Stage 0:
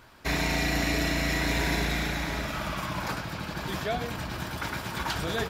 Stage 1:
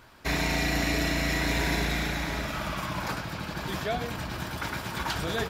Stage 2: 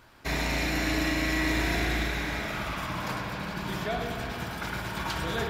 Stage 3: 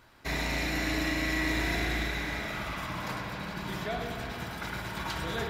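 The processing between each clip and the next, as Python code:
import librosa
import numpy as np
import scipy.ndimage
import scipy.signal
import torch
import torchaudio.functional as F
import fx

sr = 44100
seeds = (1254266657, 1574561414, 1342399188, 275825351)

y1 = x
y2 = fx.rev_spring(y1, sr, rt60_s=3.2, pass_ms=(54,), chirp_ms=80, drr_db=1.0)
y2 = F.gain(torch.from_numpy(y2), -2.5).numpy()
y3 = fx.small_body(y2, sr, hz=(2000.0, 3900.0), ring_ms=45, db=7)
y3 = F.gain(torch.from_numpy(y3), -3.0).numpy()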